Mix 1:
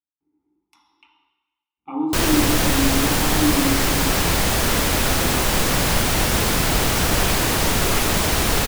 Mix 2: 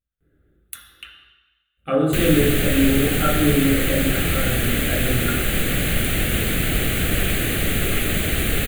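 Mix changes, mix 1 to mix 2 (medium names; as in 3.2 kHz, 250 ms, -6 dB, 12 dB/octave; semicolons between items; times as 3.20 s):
speech: remove vowel filter u; master: add static phaser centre 2.3 kHz, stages 4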